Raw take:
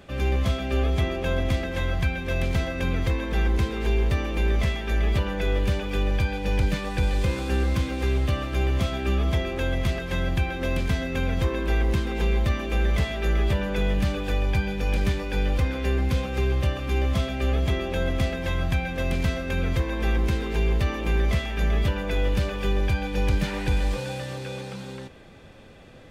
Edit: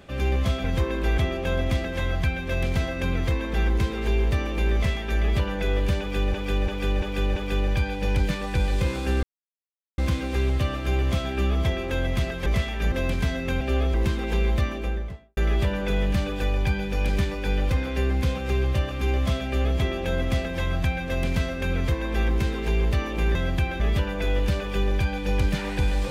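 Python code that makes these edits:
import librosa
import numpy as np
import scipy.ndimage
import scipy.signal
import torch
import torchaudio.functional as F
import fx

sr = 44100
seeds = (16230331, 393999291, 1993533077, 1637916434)

y = fx.studio_fade_out(x, sr, start_s=12.45, length_s=0.8)
y = fx.edit(y, sr, fx.swap(start_s=0.64, length_s=0.33, other_s=11.28, other_length_s=0.54),
    fx.repeat(start_s=5.79, length_s=0.34, count=5),
    fx.insert_silence(at_s=7.66, length_s=0.75),
    fx.swap(start_s=10.14, length_s=0.45, other_s=21.23, other_length_s=0.46), tone=tone)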